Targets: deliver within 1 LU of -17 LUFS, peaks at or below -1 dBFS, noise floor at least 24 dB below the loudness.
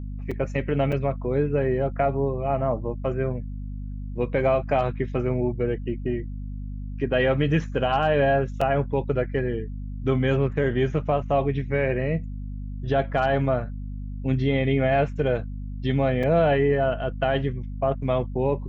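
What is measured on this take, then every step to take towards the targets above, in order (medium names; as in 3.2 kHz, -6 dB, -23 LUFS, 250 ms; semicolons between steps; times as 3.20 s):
dropouts 4; longest dropout 4.7 ms; hum 50 Hz; highest harmonic 250 Hz; hum level -30 dBFS; loudness -24.5 LUFS; peak level -10.0 dBFS; loudness target -17.0 LUFS
-> interpolate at 0.31/0.92/8.61/16.23 s, 4.7 ms; de-hum 50 Hz, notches 5; trim +7.5 dB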